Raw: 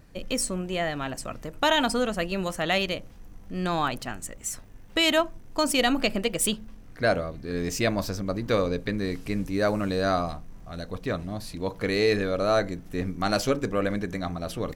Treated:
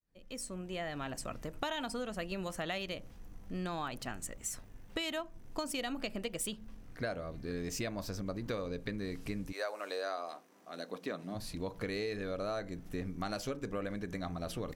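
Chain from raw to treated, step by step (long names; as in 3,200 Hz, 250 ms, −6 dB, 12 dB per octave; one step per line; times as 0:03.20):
fade in at the beginning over 1.32 s
0:09.51–0:11.34: high-pass filter 580 Hz → 170 Hz 24 dB per octave
downward compressor 6 to 1, threshold −30 dBFS, peak gain reduction 12 dB
level −4.5 dB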